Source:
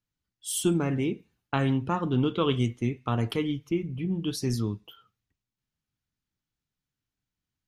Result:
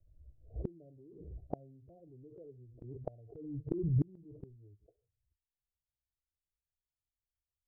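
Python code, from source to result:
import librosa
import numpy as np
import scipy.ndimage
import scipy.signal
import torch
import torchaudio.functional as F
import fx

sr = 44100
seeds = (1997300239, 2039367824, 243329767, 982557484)

p1 = fx.bin_expand(x, sr, power=1.5)
p2 = scipy.signal.sosfilt(scipy.signal.butter(16, 680.0, 'lowpass', fs=sr, output='sos'), p1)
p3 = fx.over_compress(p2, sr, threshold_db=-34.0, ratio=-1.0)
p4 = p2 + (p3 * 10.0 ** (-2.5 / 20.0))
p5 = fx.fixed_phaser(p4, sr, hz=520.0, stages=4)
p6 = fx.gate_flip(p5, sr, shuts_db=-33.0, range_db=-37)
p7 = fx.pre_swell(p6, sr, db_per_s=50.0)
y = p7 * 10.0 ** (12.0 / 20.0)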